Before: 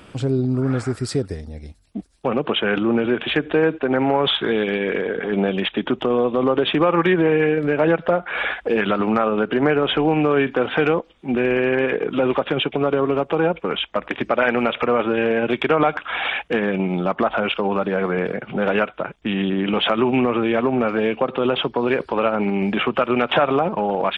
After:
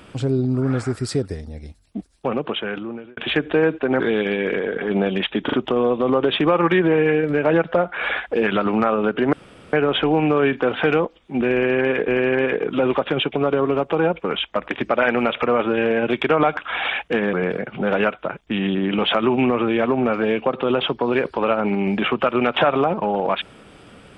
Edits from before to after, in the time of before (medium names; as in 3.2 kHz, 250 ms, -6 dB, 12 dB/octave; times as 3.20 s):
2.13–3.17 s: fade out
4.00–4.42 s: delete
5.87 s: stutter 0.04 s, 3 plays
9.67 s: insert room tone 0.40 s
11.48–12.02 s: loop, 2 plays
16.73–18.08 s: delete